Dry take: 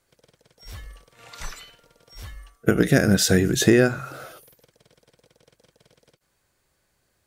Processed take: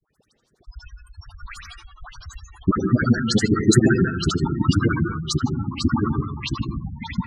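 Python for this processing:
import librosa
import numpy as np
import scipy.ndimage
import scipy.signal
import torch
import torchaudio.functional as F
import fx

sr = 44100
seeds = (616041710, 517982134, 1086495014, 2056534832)

p1 = fx.echo_pitch(x, sr, ms=311, semitones=-3, count=3, db_per_echo=-3.0)
p2 = fx.peak_eq(p1, sr, hz=500.0, db=-10.5, octaves=0.63)
p3 = fx.granulator(p2, sr, seeds[0], grain_ms=53.0, per_s=12.0, spray_ms=11.0, spread_st=3)
p4 = fx.dispersion(p3, sr, late='highs', ms=133.0, hz=1700.0)
p5 = p4 + fx.echo_single(p4, sr, ms=87, db=-21.0, dry=0)
p6 = fx.rev_plate(p5, sr, seeds[1], rt60_s=0.65, hf_ratio=0.85, predelay_ms=120, drr_db=5.0)
p7 = fx.spec_gate(p6, sr, threshold_db=-15, keep='strong')
y = F.gain(torch.from_numpy(p7), 6.0).numpy()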